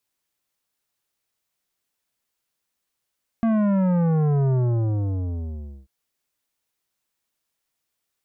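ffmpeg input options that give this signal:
-f lavfi -i "aevalsrc='0.119*clip((2.44-t)/1.35,0,1)*tanh(3.98*sin(2*PI*230*2.44/log(65/230)*(exp(log(65/230)*t/2.44)-1)))/tanh(3.98)':d=2.44:s=44100"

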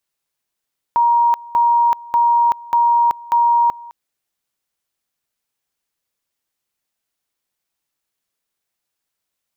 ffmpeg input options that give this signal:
-f lavfi -i "aevalsrc='pow(10,(-10.5-22*gte(mod(t,0.59),0.38))/20)*sin(2*PI*944*t)':d=2.95:s=44100"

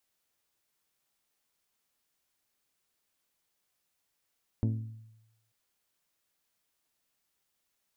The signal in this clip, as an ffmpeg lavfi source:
-f lavfi -i "aevalsrc='0.0631*pow(10,-3*t/0.95)*sin(2*PI*111*t)+0.0355*pow(10,-3*t/0.585)*sin(2*PI*222*t)+0.02*pow(10,-3*t/0.515)*sin(2*PI*266.4*t)+0.0112*pow(10,-3*t/0.44)*sin(2*PI*333*t)+0.00631*pow(10,-3*t/0.36)*sin(2*PI*444*t)+0.00355*pow(10,-3*t/0.308)*sin(2*PI*555*t)+0.002*pow(10,-3*t/0.271)*sin(2*PI*666*t)+0.00112*pow(10,-3*t/0.222)*sin(2*PI*888*t)':d=0.89:s=44100"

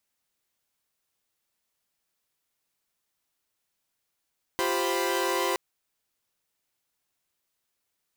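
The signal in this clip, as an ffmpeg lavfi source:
-f lavfi -i "aevalsrc='0.0398*((2*mod(349.23*t,1)-1)+(2*mod(392*t,1)-1)+(2*mod(523.25*t,1)-1)+(2*mod(987.77*t,1)-1))':d=0.97:s=44100"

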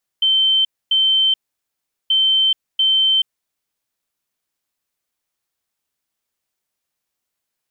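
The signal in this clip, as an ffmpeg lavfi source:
-f lavfi -i "aevalsrc='0.251*sin(2*PI*3100*t)*clip(min(mod(mod(t,1.88),0.69),0.43-mod(mod(t,1.88),0.69))/0.005,0,1)*lt(mod(t,1.88),1.38)':d=3.76:s=44100"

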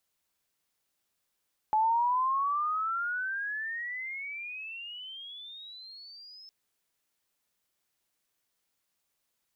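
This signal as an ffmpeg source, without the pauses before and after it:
-f lavfi -i "aevalsrc='pow(10,(-22-25.5*t/4.76)/20)*sin(2*PI*854*4.76/(31.5*log(2)/12)*(exp(31.5*log(2)/12*t/4.76)-1))':d=4.76:s=44100"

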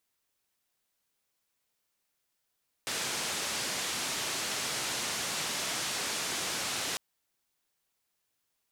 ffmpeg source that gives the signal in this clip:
-f lavfi -i "anoisesrc=c=white:d=4.1:r=44100:seed=1,highpass=f=110,lowpass=f=7500,volume=-24.6dB"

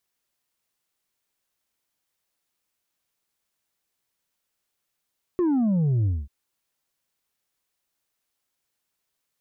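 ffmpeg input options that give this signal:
-f lavfi -i "aevalsrc='0.106*clip((0.89-t)/0.22,0,1)*tanh(1.5*sin(2*PI*370*0.89/log(65/370)*(exp(log(65/370)*t/0.89)-1)))/tanh(1.5)':d=0.89:s=44100"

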